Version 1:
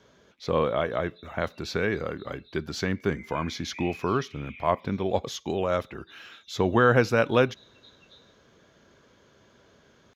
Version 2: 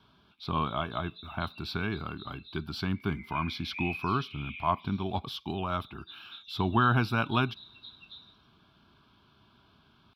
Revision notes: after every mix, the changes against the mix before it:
background +7.5 dB
master: add phaser with its sweep stopped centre 1,900 Hz, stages 6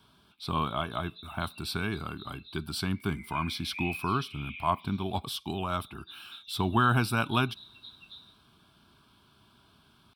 speech: remove moving average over 5 samples

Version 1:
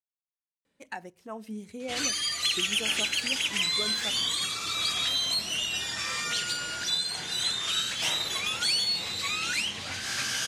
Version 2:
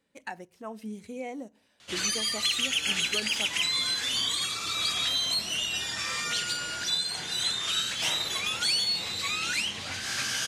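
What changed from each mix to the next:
speech: entry −0.65 s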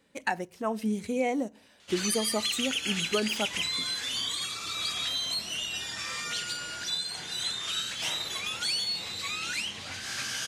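speech +9.0 dB
background −3.5 dB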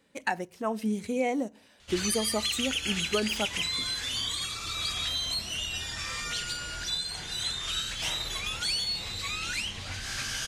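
background: remove high-pass filter 160 Hz 12 dB per octave

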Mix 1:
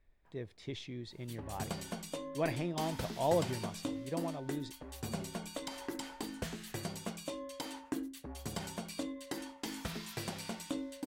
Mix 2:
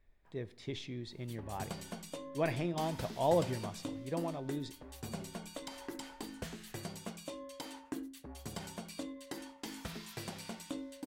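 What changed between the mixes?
background −3.5 dB
reverb: on, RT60 0.75 s

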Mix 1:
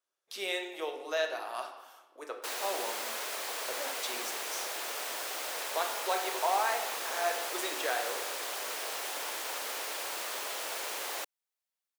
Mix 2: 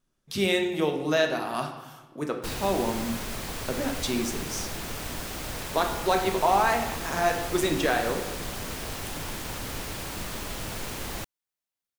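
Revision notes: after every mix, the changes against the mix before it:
speech +7.0 dB
master: remove high-pass filter 460 Hz 24 dB per octave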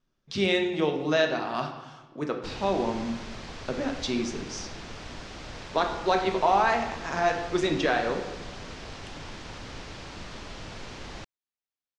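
background −5.0 dB
master: add low-pass filter 5,900 Hz 24 dB per octave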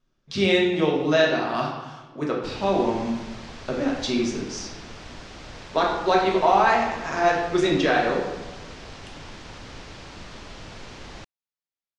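speech: send +7.5 dB

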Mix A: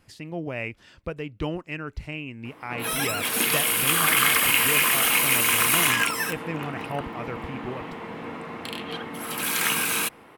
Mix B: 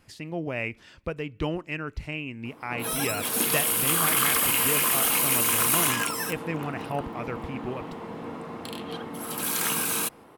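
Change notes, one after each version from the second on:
background: add parametric band 2,200 Hz −9 dB 1.3 octaves
reverb: on, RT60 0.65 s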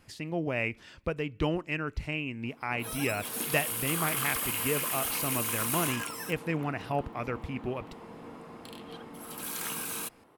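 background −9.0 dB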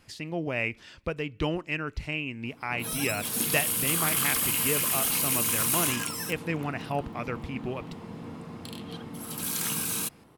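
background: add bass and treble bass +13 dB, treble +5 dB
master: add parametric band 4,400 Hz +4 dB 2 octaves

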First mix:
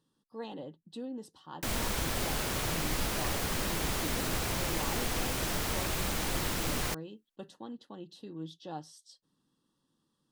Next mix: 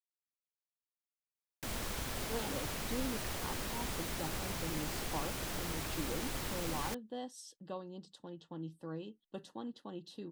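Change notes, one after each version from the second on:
speech: entry +1.95 s
background −7.0 dB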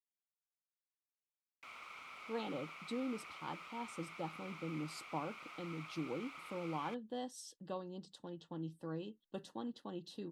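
background: add pair of resonant band-passes 1,700 Hz, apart 0.83 octaves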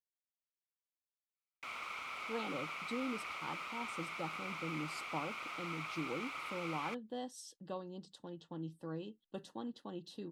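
background +8.0 dB

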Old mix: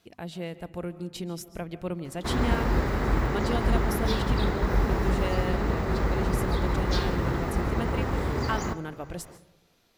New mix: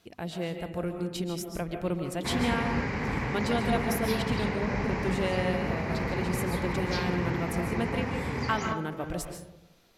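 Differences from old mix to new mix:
speech: send +11.5 dB
background: add loudspeaker in its box 110–6,300 Hz, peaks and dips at 350 Hz −10 dB, 630 Hz −8 dB, 1,300 Hz −8 dB, 2,300 Hz +8 dB, 3,600 Hz −8 dB

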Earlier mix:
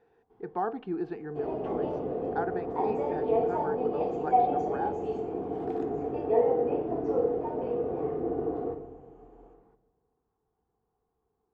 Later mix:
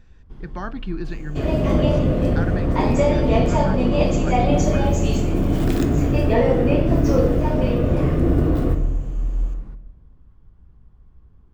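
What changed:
speech −10.0 dB
first sound: add tilt shelving filter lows +4.5 dB, about 1,200 Hz
master: remove pair of resonant band-passes 580 Hz, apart 0.72 octaves

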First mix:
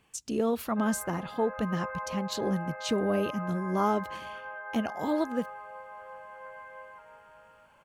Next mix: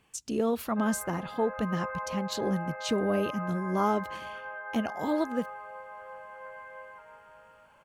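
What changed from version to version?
background: send +6.5 dB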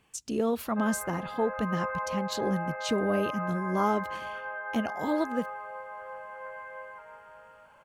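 background +3.0 dB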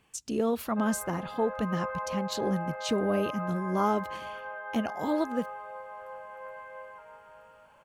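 background: remove low-pass with resonance 2,100 Hz, resonance Q 1.7

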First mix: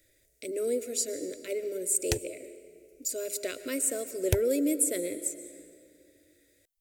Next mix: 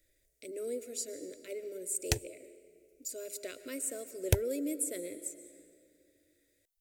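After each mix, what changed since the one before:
speech −8.0 dB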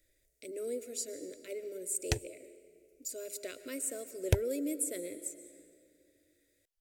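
background: add high-shelf EQ 6,900 Hz −10.5 dB

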